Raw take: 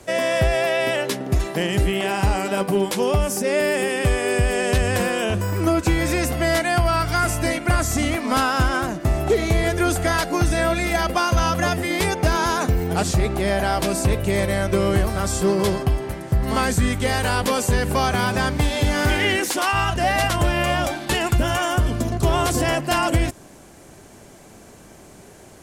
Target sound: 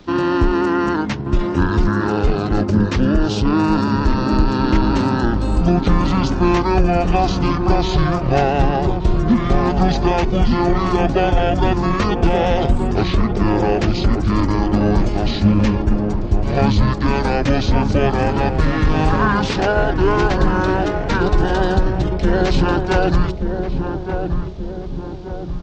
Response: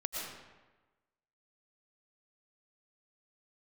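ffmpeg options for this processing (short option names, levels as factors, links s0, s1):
-filter_complex "[0:a]asetrate=23361,aresample=44100,atempo=1.88775,equalizer=f=12000:t=o:w=1.5:g=-14.5,asplit=2[s0][s1];[s1]adelay=1179,lowpass=f=850:p=1,volume=0.562,asplit=2[s2][s3];[s3]adelay=1179,lowpass=f=850:p=1,volume=0.54,asplit=2[s4][s5];[s5]adelay=1179,lowpass=f=850:p=1,volume=0.54,asplit=2[s6][s7];[s7]adelay=1179,lowpass=f=850:p=1,volume=0.54,asplit=2[s8][s9];[s9]adelay=1179,lowpass=f=850:p=1,volume=0.54,asplit=2[s10][s11];[s11]adelay=1179,lowpass=f=850:p=1,volume=0.54,asplit=2[s12][s13];[s13]adelay=1179,lowpass=f=850:p=1,volume=0.54[s14];[s0][s2][s4][s6][s8][s10][s12][s14]amix=inputs=8:normalize=0,volume=1.58"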